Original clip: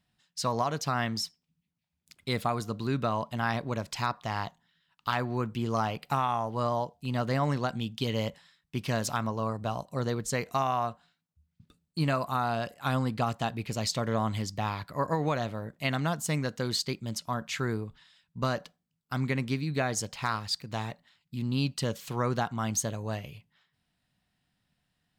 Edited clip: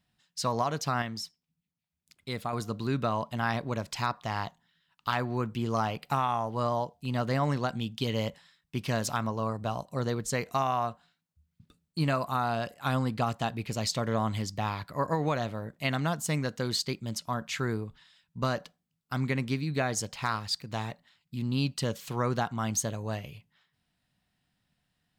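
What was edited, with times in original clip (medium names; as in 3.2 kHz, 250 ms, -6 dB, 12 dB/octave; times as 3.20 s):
1.02–2.53 s: gain -5 dB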